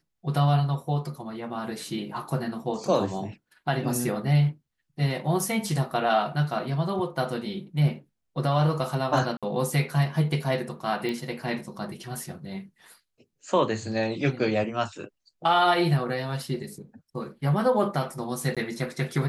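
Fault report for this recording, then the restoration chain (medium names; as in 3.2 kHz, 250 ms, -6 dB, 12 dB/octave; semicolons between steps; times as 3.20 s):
9.37–9.43 s: dropout 56 ms
11.09 s: pop -19 dBFS
18.55–18.57 s: dropout 16 ms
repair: de-click; interpolate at 9.37 s, 56 ms; interpolate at 18.55 s, 16 ms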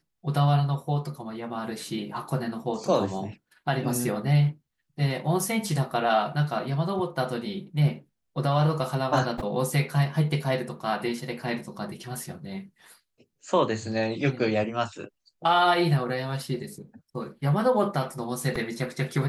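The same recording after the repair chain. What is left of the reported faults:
nothing left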